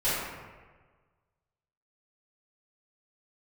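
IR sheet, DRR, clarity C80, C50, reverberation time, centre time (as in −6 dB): −15.0 dB, 1.0 dB, −2.0 dB, 1.4 s, 101 ms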